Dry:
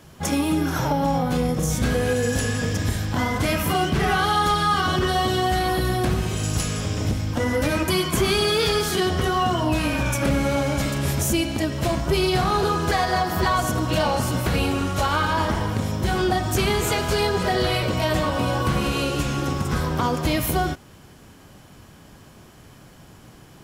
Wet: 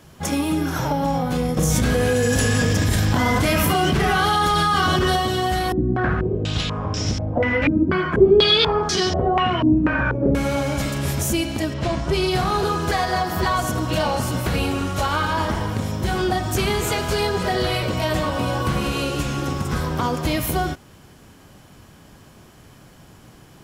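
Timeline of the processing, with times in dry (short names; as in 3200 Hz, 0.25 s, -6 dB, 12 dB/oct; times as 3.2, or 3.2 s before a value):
1.57–5.16 fast leveller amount 100%
5.72–10.35 stepped low-pass 4.1 Hz 280–5600 Hz
11.73–12.29 LPF 4400 Hz -> 11000 Hz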